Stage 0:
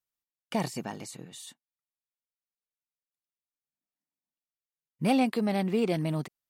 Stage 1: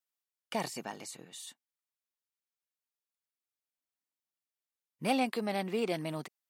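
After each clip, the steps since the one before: HPF 470 Hz 6 dB/oct; gain -1 dB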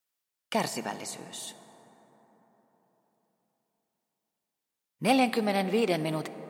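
reverb RT60 4.5 s, pre-delay 18 ms, DRR 12.5 dB; gain +6 dB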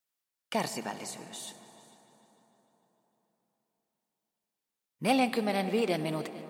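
multi-head echo 0.15 s, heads all three, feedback 43%, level -22 dB; gain -2.5 dB

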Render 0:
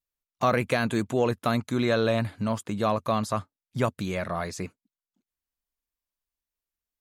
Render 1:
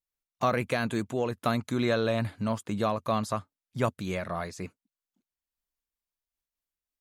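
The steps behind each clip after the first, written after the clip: noise-modulated level, depth 55%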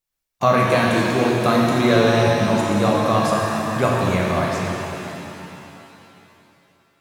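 shimmer reverb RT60 3.1 s, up +7 st, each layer -8 dB, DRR -3 dB; gain +6.5 dB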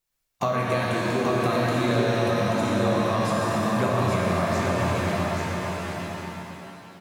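compressor 4:1, threshold -27 dBFS, peak gain reduction 13.5 dB; echo 0.834 s -4 dB; reverb RT60 1.9 s, pre-delay 8 ms, DRR 3.5 dB; gain +2 dB

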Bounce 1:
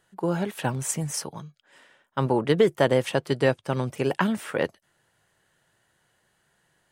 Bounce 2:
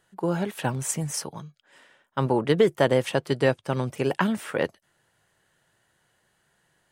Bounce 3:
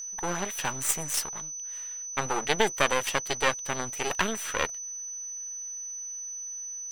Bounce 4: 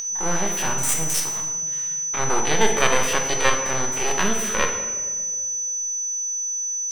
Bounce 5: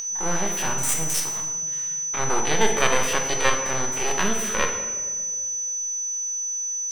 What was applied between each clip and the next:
nothing audible
half-wave rectifier; tilt shelf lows -7 dB, about 650 Hz; whine 6000 Hz -35 dBFS
stepped spectrum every 50 ms; in parallel at -1 dB: upward compressor, threshold -33 dBFS; on the sum: reverb RT60 1.7 s, pre-delay 5 ms, DRR 2.5 dB
band noise 470–7500 Hz -61 dBFS; gain -1.5 dB

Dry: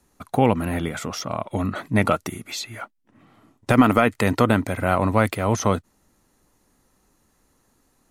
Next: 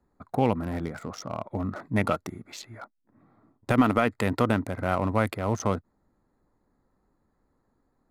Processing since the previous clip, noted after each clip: Wiener smoothing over 15 samples; gain -5.5 dB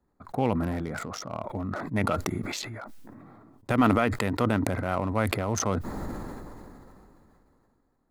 sustainer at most 21 dB/s; gain -3 dB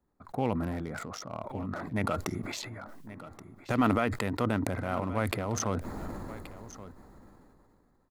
echo 1.127 s -16 dB; gain -4 dB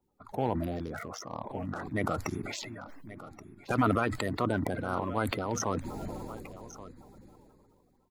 bin magnitudes rounded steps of 30 dB

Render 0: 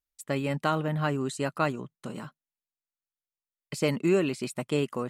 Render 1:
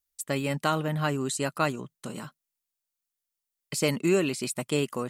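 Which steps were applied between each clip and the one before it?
high shelf 4200 Hz +10.5 dB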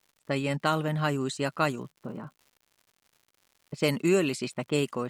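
low-pass opened by the level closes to 390 Hz, open at -23 dBFS; crackle 150/s -48 dBFS

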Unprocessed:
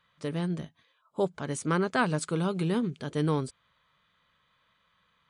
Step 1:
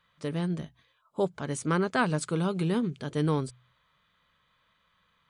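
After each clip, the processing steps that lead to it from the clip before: low shelf 62 Hz +6.5 dB; de-hum 62.18 Hz, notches 2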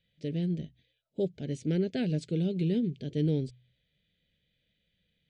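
Butterworth band-stop 1100 Hz, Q 0.53; air absorption 150 m

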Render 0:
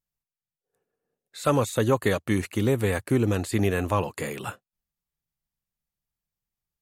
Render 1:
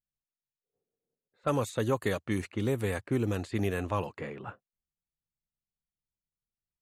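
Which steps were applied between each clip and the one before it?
low-pass opened by the level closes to 570 Hz, open at -19.5 dBFS; gain -6.5 dB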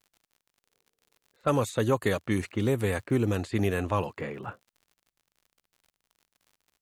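crackle 67/s -52 dBFS; gain +3.5 dB

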